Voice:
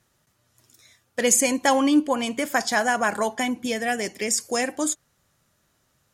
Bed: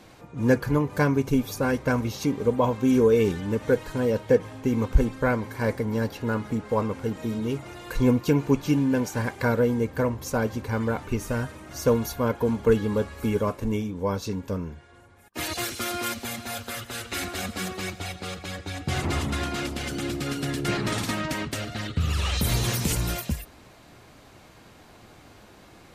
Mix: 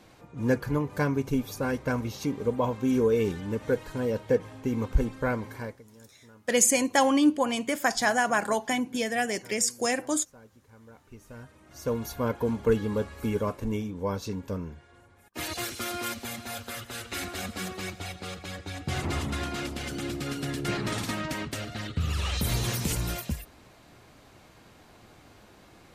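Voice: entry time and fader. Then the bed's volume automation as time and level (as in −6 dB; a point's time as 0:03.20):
5.30 s, −2.5 dB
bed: 0:05.56 −4.5 dB
0:05.87 −27.5 dB
0:10.76 −27.5 dB
0:12.18 −3.5 dB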